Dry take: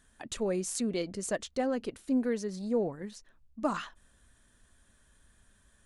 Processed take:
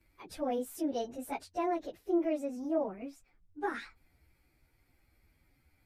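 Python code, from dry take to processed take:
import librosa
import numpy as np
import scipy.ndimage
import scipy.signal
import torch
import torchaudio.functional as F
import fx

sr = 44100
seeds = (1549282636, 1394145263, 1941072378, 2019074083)

y = fx.pitch_bins(x, sr, semitones=5.0)
y = fx.high_shelf(y, sr, hz=4900.0, db=-9.5)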